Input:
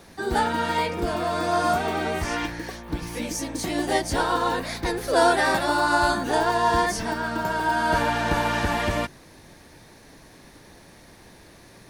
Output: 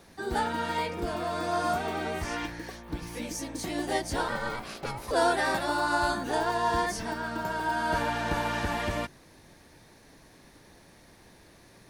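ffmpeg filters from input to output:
-filter_complex "[0:a]asettb=1/sr,asplit=3[a][b][c];[a]atrim=end=4.284[d];[b]atrim=start=4.28:end=5.11,asetpts=PTS-STARTPTS,afade=t=in:d=0.004:c=qsin,afade=t=out:st=0.826:d=0.004:c=qsin,aeval=exprs='val(0)*sin(2*PI*480*n/s)':c=same[e];[c]atrim=start=5.106[f];[d][e]acrossfade=d=0.004:c1=hsin:c2=qsin[g];[g][f]acrossfade=d=0.004:c1=qsin:c2=hsin,volume=-6dB"

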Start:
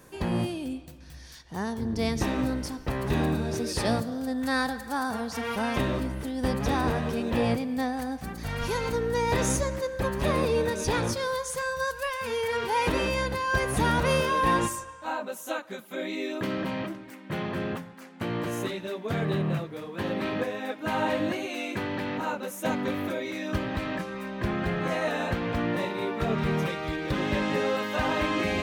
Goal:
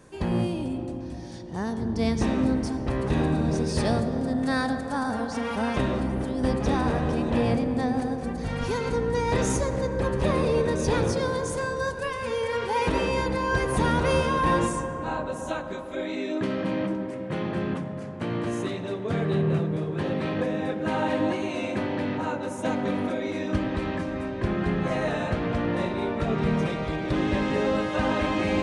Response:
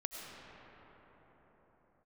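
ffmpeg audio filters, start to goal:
-filter_complex "[0:a]asplit=2[a][b];[b]tiltshelf=f=1.2k:g=6.5[c];[1:a]atrim=start_sample=2205,asetrate=52920,aresample=44100[d];[c][d]afir=irnorm=-1:irlink=0,volume=-2dB[e];[a][e]amix=inputs=2:normalize=0,aresample=22050,aresample=44100,volume=-3.5dB"

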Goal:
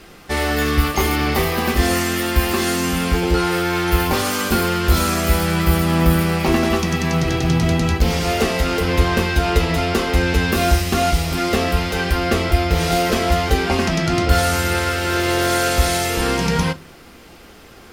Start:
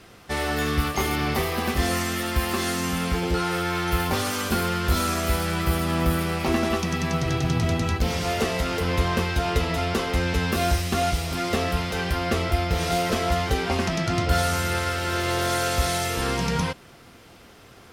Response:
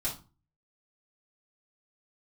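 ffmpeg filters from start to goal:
-filter_complex "[0:a]equalizer=f=15k:w=4.2:g=6,asplit=2[a][b];[1:a]atrim=start_sample=2205,asetrate=57330,aresample=44100[c];[b][c]afir=irnorm=-1:irlink=0,volume=-11dB[d];[a][d]amix=inputs=2:normalize=0,volume=4.5dB"

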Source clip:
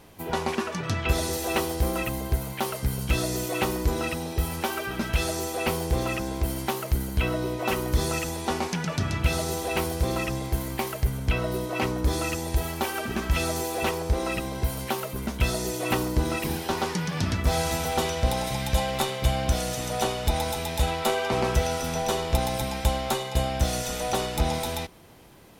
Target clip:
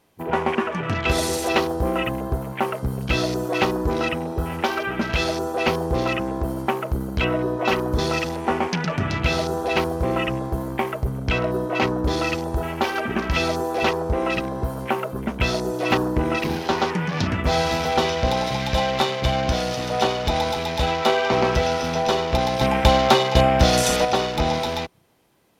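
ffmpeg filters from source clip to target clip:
-filter_complex "[0:a]lowshelf=f=86:g=-11.5,afwtdn=0.0126,asettb=1/sr,asplit=3[a][b][c];[a]atrim=end=22.614[d];[b]atrim=start=22.61:end=24.05,asetpts=PTS-STARTPTS,afade=t=in:d=0.004:c=qsin,afade=t=out:st=1.436:d=0.004:c=qsin,acontrast=52[e];[c]atrim=start=24.046[f];[d][e]acrossfade=d=0.004:c1=hsin:c2=qsin[g];[g][f]acrossfade=d=0.004:c1=qsin:c2=hsin,volume=6.5dB"

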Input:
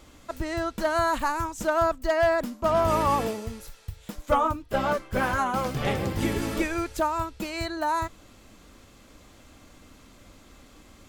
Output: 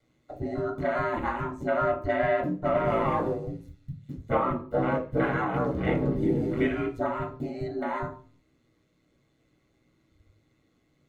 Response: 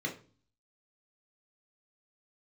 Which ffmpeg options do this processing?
-filter_complex "[0:a]afwtdn=0.0282,aeval=exprs='val(0)*sin(2*PI*59*n/s)':c=same[a];[1:a]atrim=start_sample=2205,afade=t=out:st=0.42:d=0.01,atrim=end_sample=18963[b];[a][b]afir=irnorm=-1:irlink=0,volume=-2.5dB"

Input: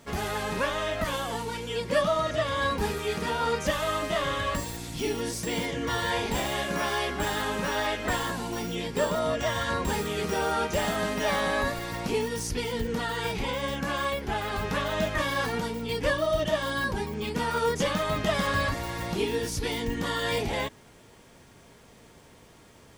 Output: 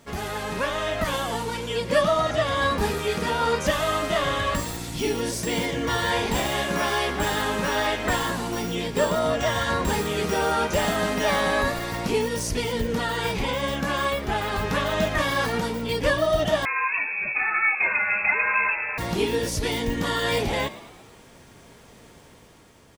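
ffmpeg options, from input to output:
-filter_complex "[0:a]dynaudnorm=f=140:g=11:m=4dB,asplit=6[a][b][c][d][e][f];[b]adelay=113,afreqshift=75,volume=-17dB[g];[c]adelay=226,afreqshift=150,volume=-22dB[h];[d]adelay=339,afreqshift=225,volume=-27.1dB[i];[e]adelay=452,afreqshift=300,volume=-32.1dB[j];[f]adelay=565,afreqshift=375,volume=-37.1dB[k];[a][g][h][i][j][k]amix=inputs=6:normalize=0,asettb=1/sr,asplit=3[l][m][n];[l]atrim=end=16.654[o];[m]atrim=start=16.65:end=18.98,asetpts=PTS-STARTPTS,afade=t=in:d=0.004:c=qsin,afade=t=out:st=2.326:d=0.004:c=qsin,lowpass=f=2.3k:t=q:w=0.5098,lowpass=f=2.3k:t=q:w=0.6013,lowpass=f=2.3k:t=q:w=0.9,lowpass=f=2.3k:t=q:w=2.563,afreqshift=-2700[p];[n]atrim=start=18.976[q];[o][p]acrossfade=d=0.004:c1=hsin:c2=qsin[r];[r][q]acrossfade=d=0.004:c1=qsin:c2=hsin"

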